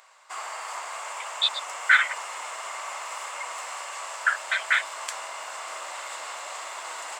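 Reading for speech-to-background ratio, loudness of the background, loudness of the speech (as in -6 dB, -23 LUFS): 11.0 dB, -35.0 LUFS, -24.0 LUFS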